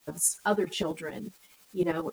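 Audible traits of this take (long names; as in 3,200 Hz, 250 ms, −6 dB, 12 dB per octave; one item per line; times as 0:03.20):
a quantiser's noise floor 10 bits, dither triangular
tremolo saw up 11 Hz, depth 75%
a shimmering, thickened sound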